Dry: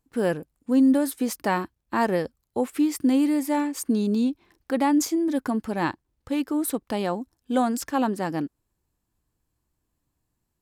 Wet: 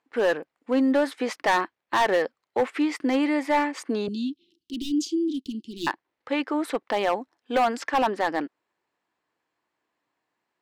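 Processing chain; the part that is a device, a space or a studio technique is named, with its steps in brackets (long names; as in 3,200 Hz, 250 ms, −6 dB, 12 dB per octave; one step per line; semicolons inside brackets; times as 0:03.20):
megaphone (band-pass filter 510–3,200 Hz; parametric band 2,000 Hz +4.5 dB 0.43 octaves; hard clipping −23.5 dBFS, distortion −10 dB)
0:04.08–0:05.87: Chebyshev band-stop filter 360–2,900 Hz, order 5
level +7.5 dB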